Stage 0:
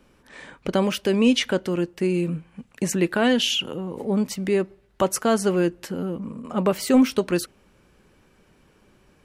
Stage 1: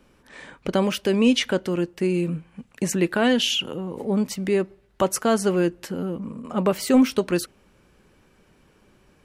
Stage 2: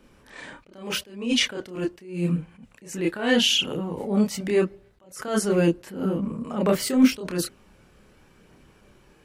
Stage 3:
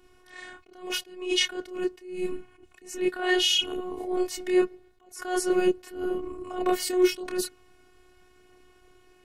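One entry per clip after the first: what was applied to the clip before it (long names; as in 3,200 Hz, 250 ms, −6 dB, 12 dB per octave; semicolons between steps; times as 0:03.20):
no processing that can be heard
multi-voice chorus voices 2, 0.41 Hz, delay 29 ms, depth 1.7 ms; level that may rise only so fast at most 110 dB per second; level +5.5 dB
phases set to zero 365 Hz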